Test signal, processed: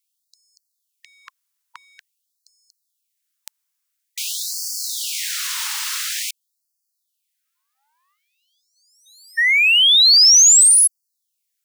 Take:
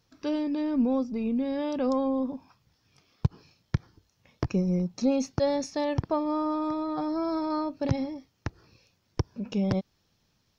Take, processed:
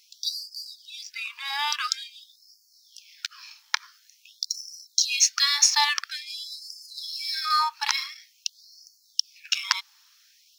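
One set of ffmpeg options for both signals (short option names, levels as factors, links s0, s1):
-filter_complex "[0:a]bass=f=250:g=7,treble=f=4000:g=6,apsyclip=4.22,tiltshelf=f=820:g=-8.5,asplit=2[s0][s1];[s1]adynamicsmooth=sensitivity=6.5:basefreq=2400,volume=1.06[s2];[s0][s2]amix=inputs=2:normalize=0,afftfilt=real='re*gte(b*sr/1024,810*pow(4400/810,0.5+0.5*sin(2*PI*0.48*pts/sr)))':imag='im*gte(b*sr/1024,810*pow(4400/810,0.5+0.5*sin(2*PI*0.48*pts/sr)))':win_size=1024:overlap=0.75,volume=0.422"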